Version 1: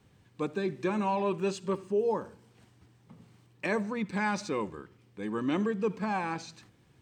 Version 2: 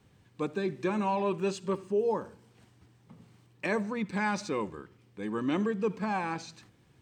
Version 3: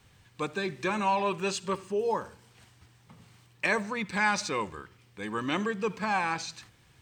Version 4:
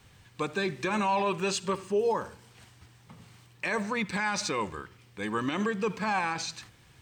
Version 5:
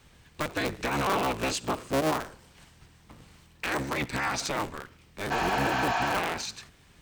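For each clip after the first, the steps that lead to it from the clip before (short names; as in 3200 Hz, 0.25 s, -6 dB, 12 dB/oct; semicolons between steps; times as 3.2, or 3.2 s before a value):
nothing audible
bell 270 Hz -12 dB 2.8 oct; gain +8.5 dB
limiter -22.5 dBFS, peak gain reduction 9 dB; gain +3 dB
cycle switcher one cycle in 3, inverted; spectral repair 5.34–6.08, 600–7300 Hz after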